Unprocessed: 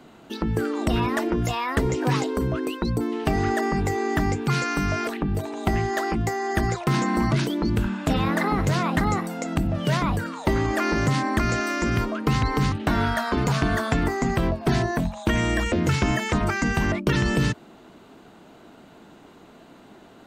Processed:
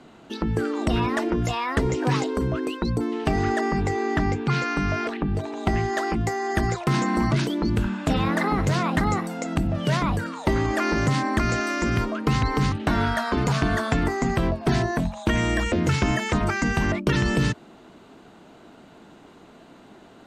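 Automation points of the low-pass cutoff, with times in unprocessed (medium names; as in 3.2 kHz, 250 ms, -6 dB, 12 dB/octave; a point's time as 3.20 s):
3.38 s 9 kHz
4.41 s 4.6 kHz
5.10 s 4.6 kHz
6.18 s 11 kHz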